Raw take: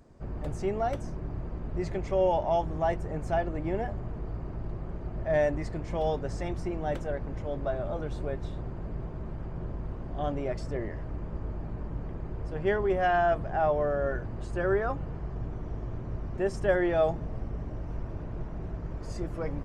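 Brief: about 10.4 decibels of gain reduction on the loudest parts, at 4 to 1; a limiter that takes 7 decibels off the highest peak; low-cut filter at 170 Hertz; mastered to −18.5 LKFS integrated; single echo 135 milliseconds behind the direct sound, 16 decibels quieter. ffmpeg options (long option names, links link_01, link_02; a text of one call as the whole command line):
ffmpeg -i in.wav -af "highpass=170,acompressor=threshold=-33dB:ratio=4,alimiter=level_in=6dB:limit=-24dB:level=0:latency=1,volume=-6dB,aecho=1:1:135:0.158,volume=22dB" out.wav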